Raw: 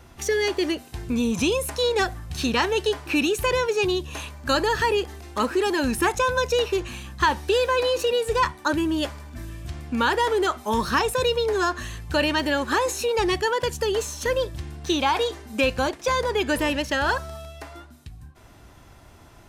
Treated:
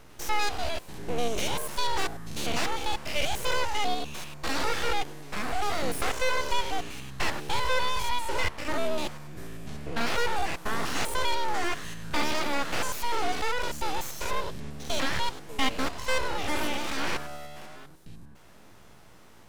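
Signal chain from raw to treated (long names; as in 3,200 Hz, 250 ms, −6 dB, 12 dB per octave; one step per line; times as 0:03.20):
spectrum averaged block by block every 100 ms
full-wave rectification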